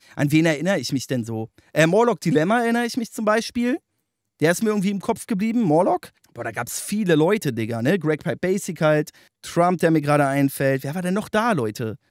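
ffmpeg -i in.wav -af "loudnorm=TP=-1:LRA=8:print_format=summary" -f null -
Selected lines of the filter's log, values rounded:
Input Integrated:    -21.4 LUFS
Input True Peak:      -3.7 dBTP
Input LRA:             1.3 LU
Input Threshold:     -31.6 LUFS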